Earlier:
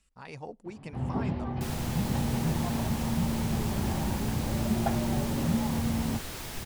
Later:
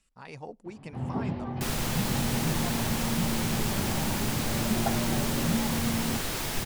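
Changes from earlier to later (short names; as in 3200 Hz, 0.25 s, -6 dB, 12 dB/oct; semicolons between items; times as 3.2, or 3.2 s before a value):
second sound +7.5 dB; master: add bell 62 Hz -14 dB 0.47 oct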